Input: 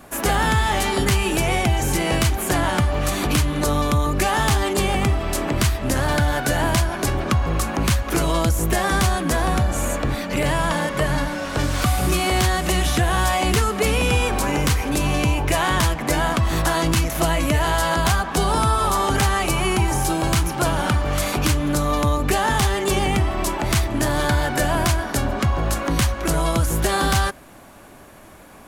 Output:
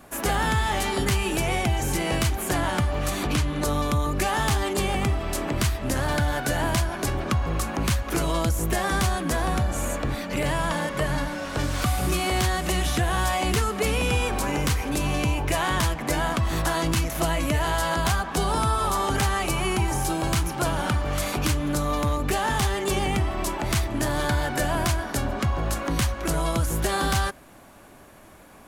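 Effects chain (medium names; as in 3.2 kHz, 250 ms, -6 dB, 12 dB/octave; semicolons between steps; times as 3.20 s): 3.23–3.63 s: treble shelf 11 kHz -11.5 dB; 21.92–22.60 s: hard clipper -13.5 dBFS, distortion -36 dB; trim -4.5 dB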